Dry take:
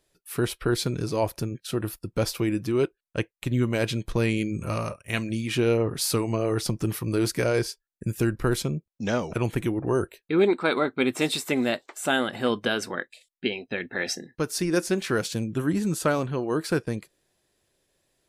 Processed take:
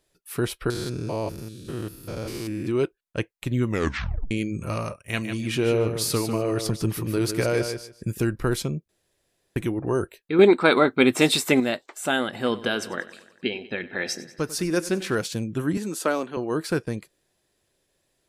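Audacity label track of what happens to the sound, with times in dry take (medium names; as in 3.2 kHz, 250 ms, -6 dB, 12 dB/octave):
0.700000	2.670000	spectrogram pixelated in time every 200 ms
3.670000	3.670000	tape stop 0.64 s
4.960000	8.190000	feedback delay 149 ms, feedback 18%, level -8 dB
8.890000	9.560000	room tone
10.390000	11.600000	gain +6 dB
12.300000	15.150000	feedback delay 95 ms, feedback 60%, level -17 dB
15.770000	16.370000	high-pass 230 Hz 24 dB/octave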